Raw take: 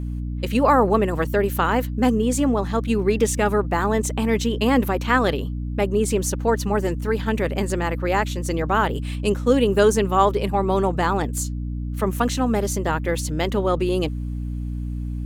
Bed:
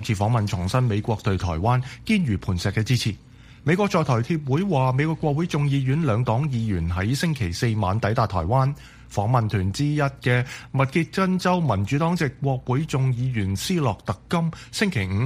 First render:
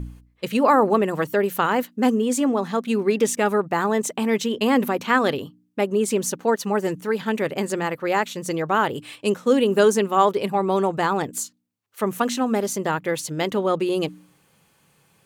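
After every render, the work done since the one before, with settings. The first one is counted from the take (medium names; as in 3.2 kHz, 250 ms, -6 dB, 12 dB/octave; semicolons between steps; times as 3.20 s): de-hum 60 Hz, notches 5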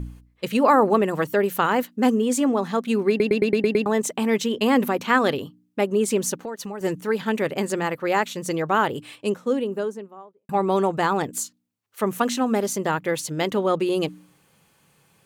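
3.09 s: stutter in place 0.11 s, 7 plays; 6.38–6.81 s: compression, threshold -29 dBFS; 8.72–10.49 s: studio fade out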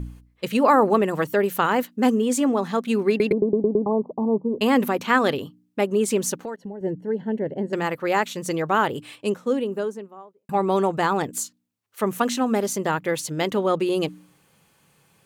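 3.32–4.61 s: steep low-pass 1.1 kHz 96 dB/octave; 6.56–7.73 s: boxcar filter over 36 samples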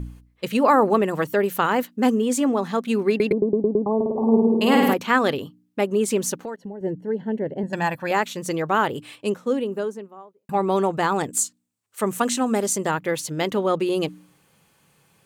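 3.95–4.94 s: flutter echo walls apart 9.1 m, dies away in 1.3 s; 7.63–8.11 s: comb 1.2 ms, depth 76%; 11.12–12.91 s: peaking EQ 8.1 kHz +9 dB 0.56 oct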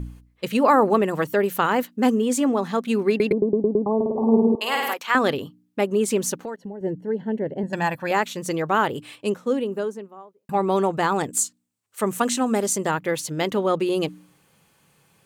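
4.55–5.15 s: high-pass 850 Hz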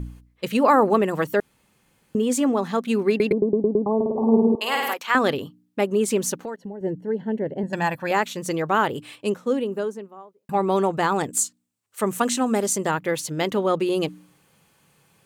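1.40–2.15 s: room tone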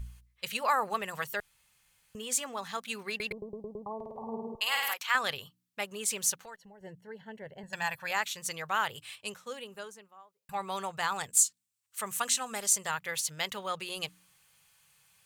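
amplifier tone stack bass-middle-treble 10-0-10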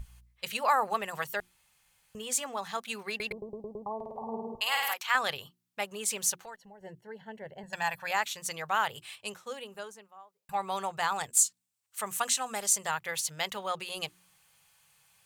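peaking EQ 760 Hz +4.5 dB 0.7 oct; hum notches 60/120/180/240/300/360 Hz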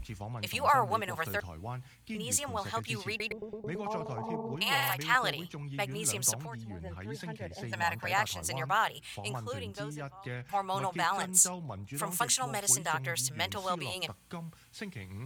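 add bed -19.5 dB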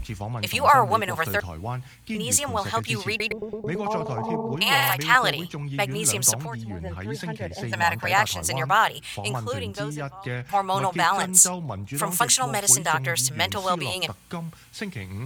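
trim +9 dB; peak limiter -2 dBFS, peak gain reduction 1 dB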